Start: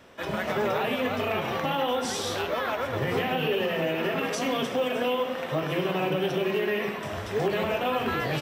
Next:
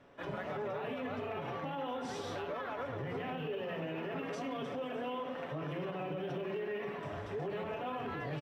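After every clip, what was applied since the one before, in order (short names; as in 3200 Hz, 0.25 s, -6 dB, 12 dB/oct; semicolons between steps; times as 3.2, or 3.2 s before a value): LPF 1500 Hz 6 dB/oct; comb 7 ms, depth 39%; limiter -24 dBFS, peak gain reduction 8.5 dB; gain -7 dB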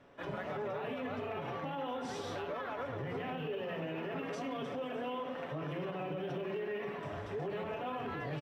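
nothing audible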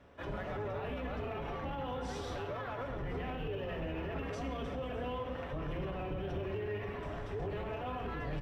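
octaver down 2 oct, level +2 dB; in parallel at -5.5 dB: soft clip -36 dBFS, distortion -13 dB; on the sum: reverb RT60 0.90 s, pre-delay 61 ms, DRR 12 dB; gain -4 dB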